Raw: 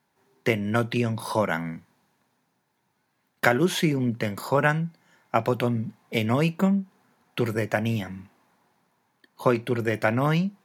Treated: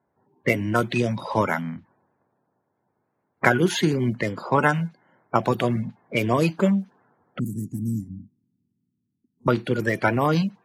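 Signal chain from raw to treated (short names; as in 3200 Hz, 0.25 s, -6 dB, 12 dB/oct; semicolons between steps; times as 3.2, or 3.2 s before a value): bin magnitudes rounded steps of 30 dB; low-pass opened by the level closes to 850 Hz, open at -21 dBFS; 7.39–9.48 elliptic band-stop 250–7700 Hz, stop band 40 dB; gain +2.5 dB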